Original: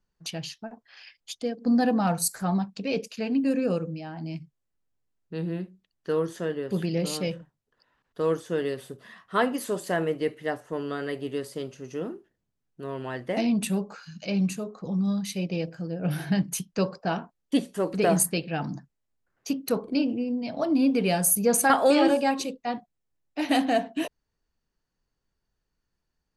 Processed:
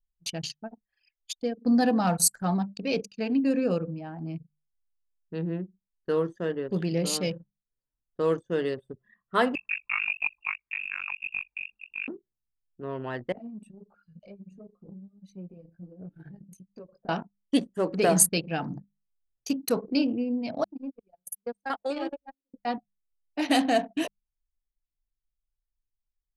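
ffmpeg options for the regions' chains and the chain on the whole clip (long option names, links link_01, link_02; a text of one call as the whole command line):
ffmpeg -i in.wav -filter_complex "[0:a]asettb=1/sr,asplit=3[link_01][link_02][link_03];[link_01]atrim=end=9.554[link_04];[link_02]atrim=start=9.55:end=12.08,asetpts=PTS-STARTPTS,afade=type=in:duration=0.004:curve=qsin,afade=type=out:start_time=2.526:duration=0.004:curve=qsin,tremolo=f=49:d=0.947,lowpass=frequency=2500:width_type=q:width=0.5098,lowpass=frequency=2500:width_type=q:width=0.6013,lowpass=frequency=2500:width_type=q:width=0.9,lowpass=frequency=2500:width_type=q:width=2.563,afreqshift=-2900[link_05];[link_03]atrim=start=12.076[link_06];[link_04][link_05]acrossfade=duration=0.004:curve1=hsin:curve2=qsin[link_07];[link_07][link_06]acrossfade=duration=0.004:curve1=qsin:curve2=hsin,asettb=1/sr,asplit=3[link_08][link_09][link_10];[link_08]atrim=end=13.324[link_11];[link_09]atrim=start=13.32:end=17.09,asetpts=PTS-STARTPTS,afade=type=in:duration=0.004:curve=qsin,afade=type=out:start_time=3.766:duration=0.004:curve=qsin,acompressor=threshold=-35dB:ratio=10:attack=3.2:release=140:knee=1:detection=peak,flanger=delay=15.5:depth=4.2:speed=1.5[link_12];[link_10]atrim=start=17.086[link_13];[link_11][link_12]acrossfade=duration=0.004:curve1=hsin:curve2=qsin[link_14];[link_14][link_13]acrossfade=duration=0.004:curve1=qsin:curve2=hsin,asettb=1/sr,asplit=3[link_15][link_16][link_17];[link_15]atrim=end=20.644[link_18];[link_16]atrim=start=20.64:end=22.54,asetpts=PTS-STARTPTS,afade=type=in:duration=0.004:curve=qsin,afade=type=out:start_time=1.896:duration=0.004:curve=qsin,agate=range=-34dB:threshold=-20dB:ratio=16:release=100:detection=peak,equalizer=frequency=96:width=1.3:gain=-13,acompressor=threshold=-44dB:ratio=1.5:attack=3.2:release=140:knee=1:detection=peak[link_19];[link_17]atrim=start=22.536[link_20];[link_18][link_19]acrossfade=duration=0.004:curve1=hsin:curve2=qsin[link_21];[link_21][link_20]acrossfade=duration=0.004:curve1=qsin:curve2=hsin,bandreject=frequency=50:width_type=h:width=6,bandreject=frequency=100:width_type=h:width=6,bandreject=frequency=150:width_type=h:width=6,bandreject=frequency=200:width_type=h:width=6,anlmdn=1.58,adynamicequalizer=threshold=0.00447:dfrequency=6900:dqfactor=0.76:tfrequency=6900:tqfactor=0.76:attack=5:release=100:ratio=0.375:range=3:mode=boostabove:tftype=bell" out.wav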